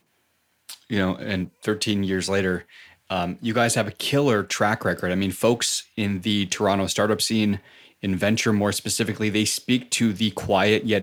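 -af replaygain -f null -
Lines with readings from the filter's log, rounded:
track_gain = +3.5 dB
track_peak = 0.323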